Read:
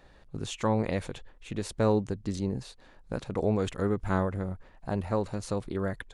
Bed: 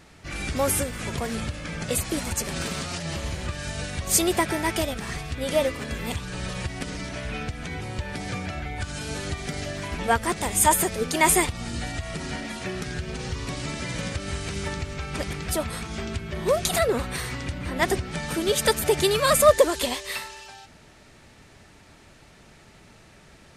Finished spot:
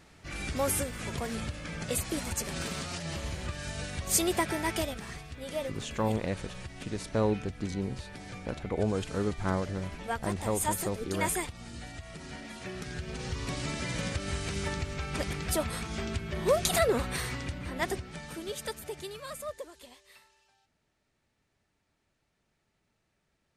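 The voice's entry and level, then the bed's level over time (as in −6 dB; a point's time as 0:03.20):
5.35 s, −2.5 dB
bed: 0:04.81 −5.5 dB
0:05.29 −12 dB
0:12.17 −12 dB
0:13.52 −3 dB
0:17.25 −3 dB
0:19.72 −25.5 dB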